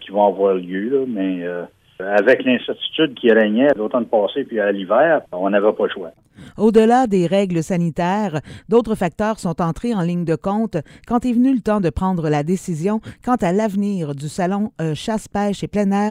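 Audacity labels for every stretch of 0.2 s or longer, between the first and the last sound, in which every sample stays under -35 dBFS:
1.670000	2.000000	silence
6.100000	6.380000	silence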